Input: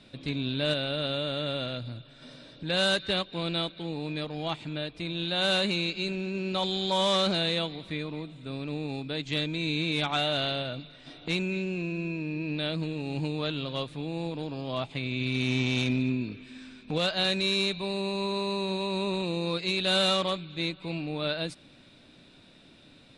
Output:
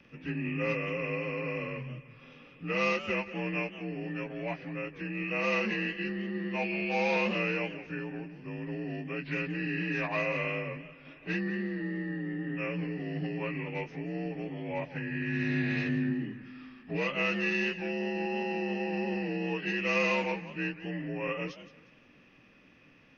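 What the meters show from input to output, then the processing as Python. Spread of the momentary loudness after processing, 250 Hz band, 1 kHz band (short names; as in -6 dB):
10 LU, -2.0 dB, -3.0 dB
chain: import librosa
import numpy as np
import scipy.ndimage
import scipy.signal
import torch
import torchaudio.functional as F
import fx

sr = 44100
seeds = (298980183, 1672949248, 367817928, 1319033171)

y = fx.partial_stretch(x, sr, pct=86)
y = fx.echo_warbled(y, sr, ms=178, feedback_pct=33, rate_hz=2.8, cents=196, wet_db=-14.5)
y = y * librosa.db_to_amplitude(-2.0)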